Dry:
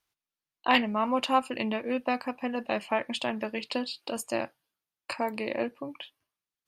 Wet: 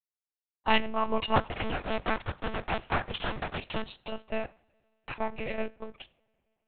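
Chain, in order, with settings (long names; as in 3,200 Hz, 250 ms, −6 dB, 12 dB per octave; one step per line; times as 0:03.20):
0:01.36–0:03.82: sub-harmonics by changed cycles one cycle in 3, inverted
high-pass filter 72 Hz
dead-zone distortion −44.5 dBFS
convolution reverb, pre-delay 3 ms, DRR 15.5 dB
one-pitch LPC vocoder at 8 kHz 220 Hz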